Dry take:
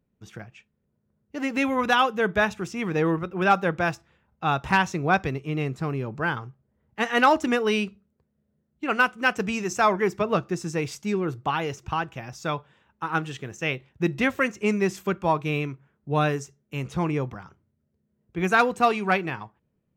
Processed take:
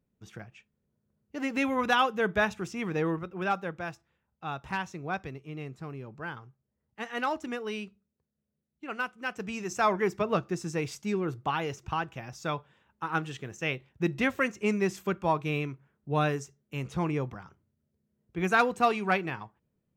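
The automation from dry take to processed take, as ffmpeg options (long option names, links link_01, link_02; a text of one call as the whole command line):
ffmpeg -i in.wav -af "volume=4dB,afade=type=out:start_time=2.71:duration=1.05:silence=0.398107,afade=type=in:start_time=9.29:duration=0.66:silence=0.398107" out.wav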